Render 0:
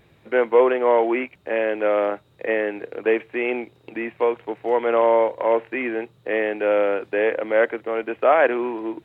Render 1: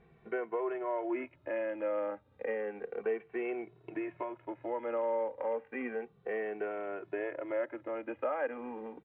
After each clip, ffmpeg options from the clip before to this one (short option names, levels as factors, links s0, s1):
-filter_complex "[0:a]lowpass=1900,acompressor=threshold=0.0316:ratio=2.5,asplit=2[s0][s1];[s1]adelay=2.2,afreqshift=-0.32[s2];[s0][s2]amix=inputs=2:normalize=1,volume=0.708"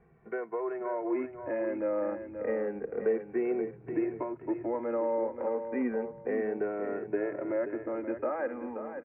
-filter_complex "[0:a]lowpass=f=2100:w=0.5412,lowpass=f=2100:w=1.3066,acrossover=split=340[s0][s1];[s0]dynaudnorm=f=480:g=5:m=3.55[s2];[s2][s1]amix=inputs=2:normalize=0,aecho=1:1:530|1060|1590:0.355|0.0958|0.0259"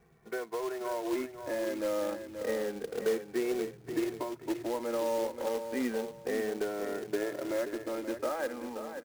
-af "highshelf=f=2400:g=8,acrusher=bits=3:mode=log:mix=0:aa=0.000001,volume=0.794"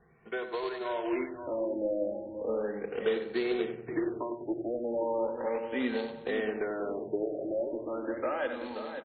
-filter_complex "[0:a]highshelf=f=2500:g=10.5,asplit=2[s0][s1];[s1]adelay=93,lowpass=f=2000:p=1,volume=0.398,asplit=2[s2][s3];[s3]adelay=93,lowpass=f=2000:p=1,volume=0.47,asplit=2[s4][s5];[s5]adelay=93,lowpass=f=2000:p=1,volume=0.47,asplit=2[s6][s7];[s7]adelay=93,lowpass=f=2000:p=1,volume=0.47,asplit=2[s8][s9];[s9]adelay=93,lowpass=f=2000:p=1,volume=0.47[s10];[s2][s4][s6][s8][s10]amix=inputs=5:normalize=0[s11];[s0][s11]amix=inputs=2:normalize=0,afftfilt=real='re*lt(b*sr/1024,790*pow(4500/790,0.5+0.5*sin(2*PI*0.37*pts/sr)))':imag='im*lt(b*sr/1024,790*pow(4500/790,0.5+0.5*sin(2*PI*0.37*pts/sr)))':win_size=1024:overlap=0.75"